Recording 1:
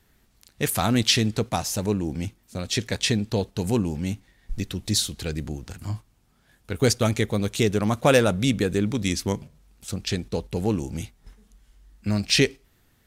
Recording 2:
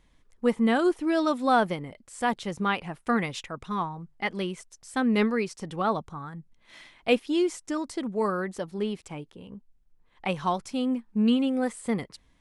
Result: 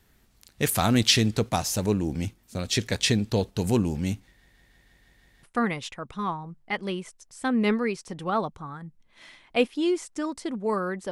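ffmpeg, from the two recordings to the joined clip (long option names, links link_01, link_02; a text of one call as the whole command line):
ffmpeg -i cue0.wav -i cue1.wav -filter_complex "[0:a]apad=whole_dur=11.11,atrim=end=11.11,asplit=7[link_01][link_02][link_03][link_04][link_05][link_06][link_07];[link_01]atrim=end=4.472[link_08];[link_02]atrim=start=4.308:end=4.472[link_09];[link_03]atrim=start=4.308:end=4.472[link_10];[link_04]atrim=start=4.308:end=4.472[link_11];[link_05]atrim=start=4.308:end=4.472[link_12];[link_06]atrim=start=4.308:end=4.472[link_13];[link_07]atrim=start=4.308:end=4.472[link_14];[1:a]atrim=start=2.948:end=8.63[link_15];[link_08][link_09]acrossfade=duration=0.004:curve1=hsin:curve2=hsin[link_16];[link_16][link_10]acrossfade=duration=0.004:curve1=hsin:curve2=hsin[link_17];[link_17][link_11]acrossfade=duration=0.004:curve1=hsin:curve2=hsin[link_18];[link_18][link_12]acrossfade=duration=0.004:curve1=hsin:curve2=hsin[link_19];[link_19][link_13]acrossfade=duration=0.004:curve1=hsin:curve2=hsin[link_20];[link_20][link_14]acrossfade=duration=0.004:curve1=hsin:curve2=hsin[link_21];[link_21][link_15]acrossfade=duration=0.004:curve1=hsin:curve2=hsin" out.wav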